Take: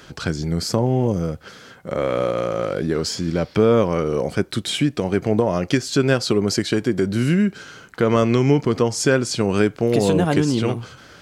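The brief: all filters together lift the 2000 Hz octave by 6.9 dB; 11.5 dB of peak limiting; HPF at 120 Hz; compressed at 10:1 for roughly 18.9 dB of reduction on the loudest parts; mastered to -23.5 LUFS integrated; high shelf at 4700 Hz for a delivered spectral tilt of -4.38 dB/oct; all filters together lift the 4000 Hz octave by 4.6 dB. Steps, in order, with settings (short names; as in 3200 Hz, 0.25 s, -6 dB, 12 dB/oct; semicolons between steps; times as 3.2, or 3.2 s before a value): HPF 120 Hz; bell 2000 Hz +9 dB; bell 4000 Hz +5.5 dB; high shelf 4700 Hz -4.5 dB; compressor 10:1, threshold -30 dBFS; gain +12.5 dB; limiter -12 dBFS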